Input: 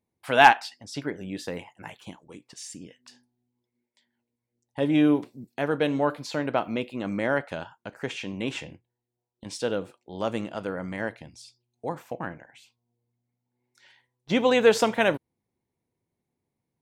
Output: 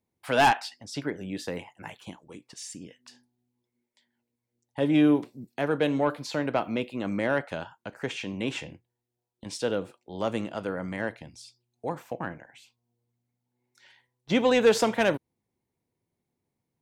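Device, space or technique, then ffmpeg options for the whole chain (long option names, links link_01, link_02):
one-band saturation: -filter_complex "[0:a]acrossover=split=380|4900[link_01][link_02][link_03];[link_02]asoftclip=type=tanh:threshold=-16dB[link_04];[link_01][link_04][link_03]amix=inputs=3:normalize=0"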